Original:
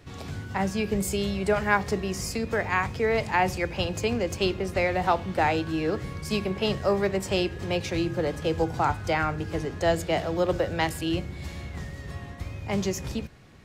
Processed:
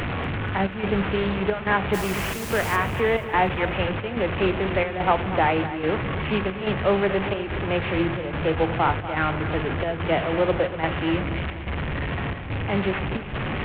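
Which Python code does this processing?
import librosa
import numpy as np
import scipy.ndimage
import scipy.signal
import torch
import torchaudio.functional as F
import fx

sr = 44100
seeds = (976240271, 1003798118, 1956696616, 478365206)

p1 = fx.delta_mod(x, sr, bps=16000, step_db=-24.0)
p2 = fx.chopper(p1, sr, hz=1.2, depth_pct=60, duty_pct=80)
p3 = fx.dmg_noise_colour(p2, sr, seeds[0], colour='white', level_db=-39.0, at=(1.93, 2.75), fade=0.02)
p4 = p3 + fx.echo_feedback(p3, sr, ms=242, feedback_pct=42, wet_db=-13, dry=0)
p5 = fx.doppler_dist(p4, sr, depth_ms=0.15)
y = p5 * 10.0 ** (3.0 / 20.0)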